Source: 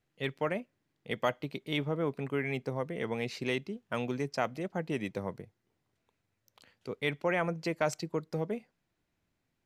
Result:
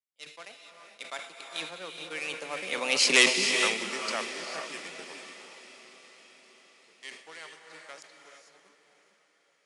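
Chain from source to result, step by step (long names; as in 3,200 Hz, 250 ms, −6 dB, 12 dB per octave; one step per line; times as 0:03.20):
source passing by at 0:03.18, 33 m/s, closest 4.5 metres
Butterworth high-pass 150 Hz 72 dB per octave
low-shelf EQ 220 Hz −6 dB
leveller curve on the samples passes 2
linear-phase brick-wall low-pass 11,000 Hz
spectral tilt +4.5 dB per octave
feedback delay with all-pass diffusion 617 ms, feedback 54%, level −15 dB
reverb whose tail is shaped and stops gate 480 ms rising, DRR 3.5 dB
level that may fall only so fast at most 100 dB per second
level +7.5 dB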